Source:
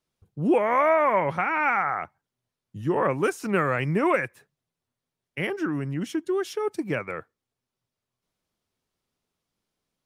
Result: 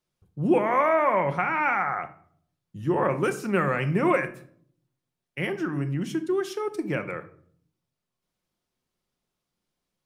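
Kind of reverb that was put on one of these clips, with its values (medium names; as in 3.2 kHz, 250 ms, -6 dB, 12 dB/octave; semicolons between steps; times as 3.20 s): simulated room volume 800 m³, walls furnished, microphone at 0.92 m; trim -1.5 dB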